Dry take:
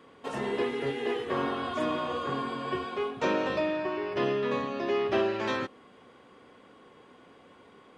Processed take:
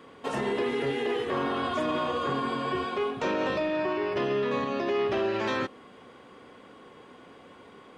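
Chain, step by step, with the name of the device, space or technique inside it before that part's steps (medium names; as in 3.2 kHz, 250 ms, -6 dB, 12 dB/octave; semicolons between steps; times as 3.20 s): soft clipper into limiter (saturation -17 dBFS, distortion -26 dB; peak limiter -25 dBFS, peak gain reduction 6 dB); trim +4.5 dB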